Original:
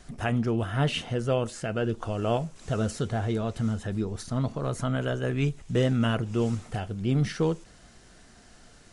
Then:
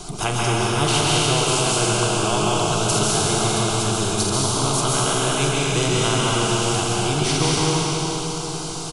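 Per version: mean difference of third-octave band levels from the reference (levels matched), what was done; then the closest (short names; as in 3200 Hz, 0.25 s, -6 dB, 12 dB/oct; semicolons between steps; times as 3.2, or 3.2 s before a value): 13.5 dB: fixed phaser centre 360 Hz, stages 8; doubler 42 ms -11.5 dB; plate-style reverb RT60 2.6 s, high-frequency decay 1×, pre-delay 0.12 s, DRR -5 dB; spectral compressor 2:1; gain +4 dB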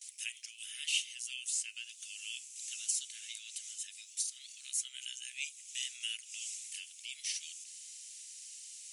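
23.5 dB: steep high-pass 2400 Hz 48 dB/oct; gate with hold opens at -52 dBFS; resonant high shelf 5500 Hz +7 dB, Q 1.5; in parallel at +3 dB: compressor, threshold -56 dBFS, peak gain reduction 25 dB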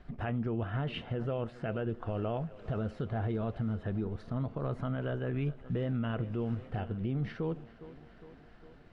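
5.5 dB: transient shaper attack +2 dB, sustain -2 dB; air absorption 400 m; on a send: thinning echo 0.408 s, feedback 68%, high-pass 150 Hz, level -21 dB; on the sum: limiter -23 dBFS, peak gain reduction 9.5 dB; gain -2.5 dB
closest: third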